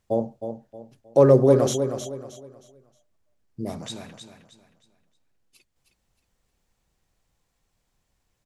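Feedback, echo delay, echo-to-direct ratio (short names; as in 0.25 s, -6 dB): 32%, 0.313 s, -8.0 dB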